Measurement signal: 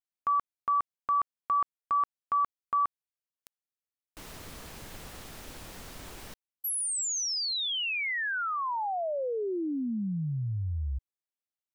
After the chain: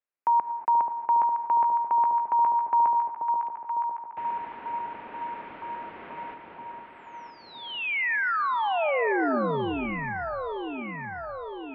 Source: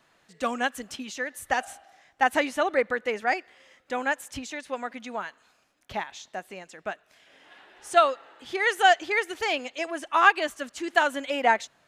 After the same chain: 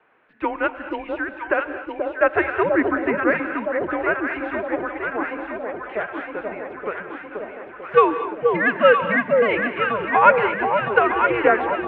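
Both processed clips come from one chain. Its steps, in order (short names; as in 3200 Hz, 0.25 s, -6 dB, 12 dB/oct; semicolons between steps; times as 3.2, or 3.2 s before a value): echo with dull and thin repeats by turns 0.482 s, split 1100 Hz, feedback 78%, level -3 dB; non-linear reverb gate 0.26 s rising, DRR 10.5 dB; mistuned SSB -210 Hz 450–2700 Hz; gain +5 dB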